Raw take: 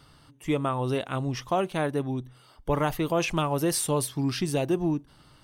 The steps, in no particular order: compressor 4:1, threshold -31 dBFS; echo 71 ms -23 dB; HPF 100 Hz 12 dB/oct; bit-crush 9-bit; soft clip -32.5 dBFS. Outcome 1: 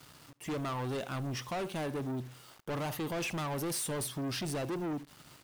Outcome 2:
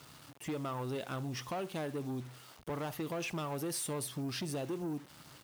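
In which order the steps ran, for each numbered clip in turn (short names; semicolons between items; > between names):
HPF > bit-crush > echo > soft clip > compressor; compressor > echo > bit-crush > soft clip > HPF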